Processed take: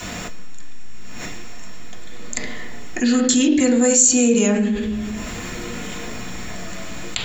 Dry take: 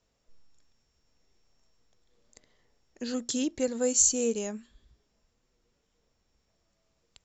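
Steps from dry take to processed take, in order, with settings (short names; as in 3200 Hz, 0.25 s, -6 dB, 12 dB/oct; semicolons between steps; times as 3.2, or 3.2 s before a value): high shelf 2100 Hz +7.5 dB; reverb RT60 0.70 s, pre-delay 3 ms, DRR -5 dB; fast leveller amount 70%; gain -2 dB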